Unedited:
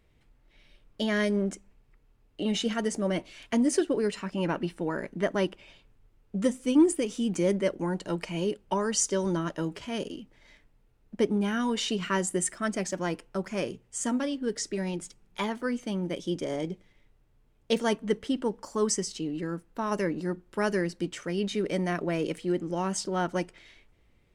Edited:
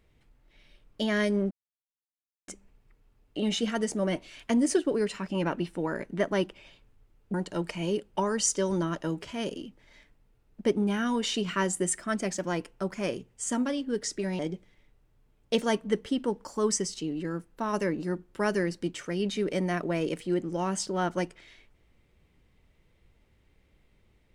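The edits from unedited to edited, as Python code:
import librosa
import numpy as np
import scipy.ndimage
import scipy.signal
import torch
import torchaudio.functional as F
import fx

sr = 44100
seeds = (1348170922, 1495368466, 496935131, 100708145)

y = fx.edit(x, sr, fx.insert_silence(at_s=1.51, length_s=0.97),
    fx.cut(start_s=6.37, length_s=1.51),
    fx.cut(start_s=14.93, length_s=1.64), tone=tone)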